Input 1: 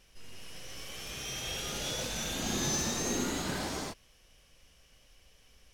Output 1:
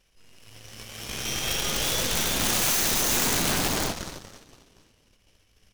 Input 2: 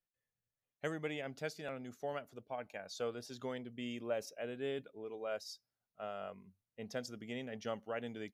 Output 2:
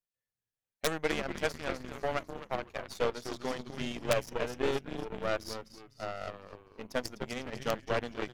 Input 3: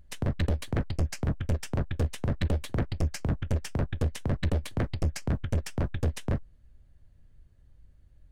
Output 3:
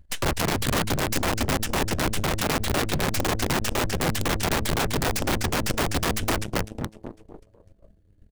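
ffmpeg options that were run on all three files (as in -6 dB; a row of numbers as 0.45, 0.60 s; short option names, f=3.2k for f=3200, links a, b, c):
-filter_complex "[0:a]asplit=7[a][b][c][d][e][f][g];[b]adelay=251,afreqshift=-110,volume=-7dB[h];[c]adelay=502,afreqshift=-220,volume=-12.5dB[i];[d]adelay=753,afreqshift=-330,volume=-18dB[j];[e]adelay=1004,afreqshift=-440,volume=-23.5dB[k];[f]adelay=1255,afreqshift=-550,volume=-29.1dB[l];[g]adelay=1506,afreqshift=-660,volume=-34.6dB[m];[a][h][i][j][k][l][m]amix=inputs=7:normalize=0,aeval=exprs='(mod(22.4*val(0)+1,2)-1)/22.4':c=same,aeval=exprs='0.0447*(cos(1*acos(clip(val(0)/0.0447,-1,1)))-cos(1*PI/2))+0.0178*(cos(2*acos(clip(val(0)/0.0447,-1,1)))-cos(2*PI/2))+0.0141*(cos(4*acos(clip(val(0)/0.0447,-1,1)))-cos(4*PI/2))+0.000282*(cos(5*acos(clip(val(0)/0.0447,-1,1)))-cos(5*PI/2))+0.00501*(cos(7*acos(clip(val(0)/0.0447,-1,1)))-cos(7*PI/2))':c=same,volume=8dB"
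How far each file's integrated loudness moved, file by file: +10.0, +7.5, +5.5 LU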